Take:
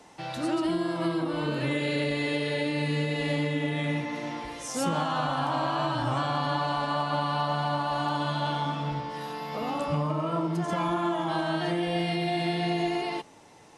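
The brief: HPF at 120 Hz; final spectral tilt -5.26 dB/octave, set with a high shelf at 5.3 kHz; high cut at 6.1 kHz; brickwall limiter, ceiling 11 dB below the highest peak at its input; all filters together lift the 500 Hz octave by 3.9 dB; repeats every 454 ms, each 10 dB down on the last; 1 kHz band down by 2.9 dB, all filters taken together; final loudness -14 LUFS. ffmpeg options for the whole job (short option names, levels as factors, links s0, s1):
-af "highpass=120,lowpass=6100,equalizer=f=500:t=o:g=7.5,equalizer=f=1000:t=o:g=-6.5,highshelf=f=5300:g=-9,alimiter=level_in=1.26:limit=0.0631:level=0:latency=1,volume=0.794,aecho=1:1:454|908|1362|1816:0.316|0.101|0.0324|0.0104,volume=9.44"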